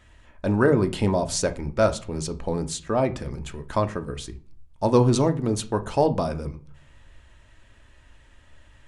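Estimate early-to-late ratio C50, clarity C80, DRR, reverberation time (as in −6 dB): 16.5 dB, 23.0 dB, 8.0 dB, non-exponential decay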